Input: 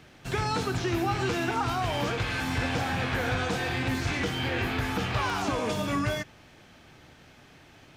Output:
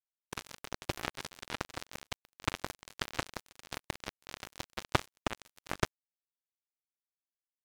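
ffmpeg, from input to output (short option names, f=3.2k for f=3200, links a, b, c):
-af "acrusher=bits=2:mix=0:aa=0.5,asetrate=45938,aresample=44100,volume=13dB"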